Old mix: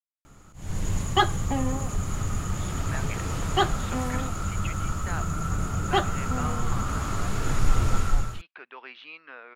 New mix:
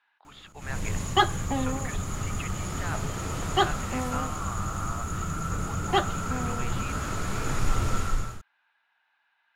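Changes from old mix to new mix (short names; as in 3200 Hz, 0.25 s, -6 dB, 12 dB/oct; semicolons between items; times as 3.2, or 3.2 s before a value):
speech: entry -2.25 s; background: add low shelf 130 Hz -5 dB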